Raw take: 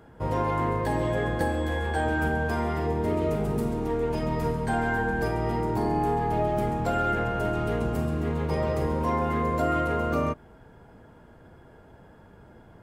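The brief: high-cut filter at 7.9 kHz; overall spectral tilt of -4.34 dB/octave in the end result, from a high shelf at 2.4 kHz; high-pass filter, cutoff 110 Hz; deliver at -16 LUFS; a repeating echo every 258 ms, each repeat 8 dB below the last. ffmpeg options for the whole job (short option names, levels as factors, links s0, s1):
-af "highpass=110,lowpass=7900,highshelf=f=2400:g=-4,aecho=1:1:258|516|774|1032|1290:0.398|0.159|0.0637|0.0255|0.0102,volume=3.55"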